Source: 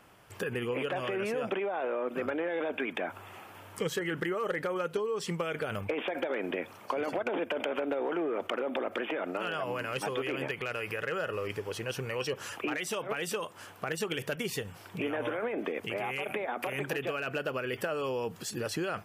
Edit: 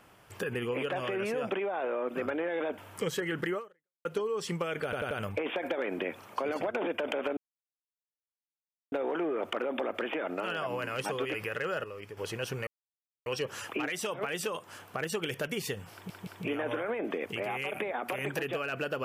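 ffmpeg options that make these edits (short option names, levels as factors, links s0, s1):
-filter_complex "[0:a]asplit=13[s0][s1][s2][s3][s4][s5][s6][s7][s8][s9][s10][s11][s12];[s0]atrim=end=2.782[s13];[s1]atrim=start=3.568:end=4.84,asetpts=PTS-STARTPTS,afade=t=out:st=0.792:d=0.48:c=exp[s14];[s2]atrim=start=4.84:end=5.722,asetpts=PTS-STARTPTS,afade=t=in:d=0.004:c=hsin[s15];[s3]atrim=start=5.628:end=5.722[s16];[s4]atrim=start=5.628:end=5.722[s17];[s5]atrim=start=5.628:end=7.89,asetpts=PTS-STARTPTS,afade=t=out:st=2.258:d=0.004:c=hsin,apad=pad_dur=1.55[s18];[s6]atrim=start=7.89:end=10.312,asetpts=PTS-STARTPTS,afade=t=in:d=0.004:c=hsin[s19];[s7]atrim=start=10.808:end=11.312[s20];[s8]atrim=start=11.308:end=11.642,asetpts=PTS-STARTPTS,volume=0.376[s21];[s9]atrim=start=11.638:end=12.14,asetpts=PTS-STARTPTS,afade=t=out:st=0.498:d=0.004:c=hsin,apad=pad_dur=0.59[s22];[s10]atrim=start=12.14:end=14.982,asetpts=PTS-STARTPTS,afade=t=in:d=0.004:c=hsin[s23];[s11]atrim=start=14.808:end=14.982[s24];[s12]atrim=start=14.808[s25];[s14][s15]concat=n=2:v=0:a=1[s26];[s13][s26]acrossfade=d=0.004:c1=hsin:c2=hsin[s27];[s27][s16]acrossfade=d=0.004:c1=hsin:c2=hsin[s28];[s28][s17]acrossfade=d=0.004:c1=hsin:c2=hsin[s29];[s18][s19]concat=n=2:v=0:a=1[s30];[s29][s30]acrossfade=d=0.004:c1=hsin:c2=hsin[s31];[s31][s20]acrossfade=d=0.004:c1=hsin:c2=hsin[s32];[s32][s21]acrossfade=d=0.004:c1=hsin:c2=hsin[s33];[s22][s23]concat=n=2:v=0:a=1[s34];[s33][s34]acrossfade=d=0.004:c1=hsin:c2=hsin[s35];[s35][s24]acrossfade=d=0.004:c1=hsin:c2=hsin[s36];[s36][s25]acrossfade=d=0.004:c1=hsin:c2=hsin"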